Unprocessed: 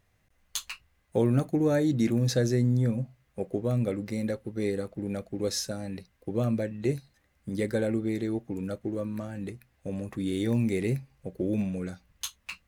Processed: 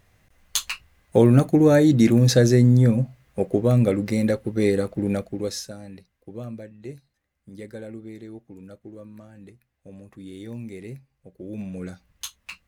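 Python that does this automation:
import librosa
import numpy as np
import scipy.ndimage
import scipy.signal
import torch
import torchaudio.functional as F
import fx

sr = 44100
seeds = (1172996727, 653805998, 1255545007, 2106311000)

y = fx.gain(x, sr, db=fx.line((5.13, 9.0), (5.66, -3.0), (6.74, -9.5), (11.39, -9.5), (11.84, 1.0)))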